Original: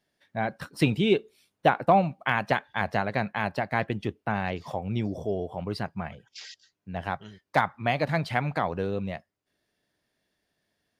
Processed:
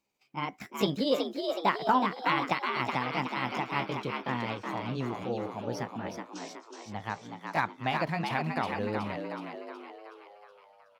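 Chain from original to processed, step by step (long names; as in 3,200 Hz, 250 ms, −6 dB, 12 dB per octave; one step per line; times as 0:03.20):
pitch glide at a constant tempo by +5.5 semitones ending unshifted
echo with shifted repeats 371 ms, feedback 53%, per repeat +76 Hz, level −5 dB
level −4 dB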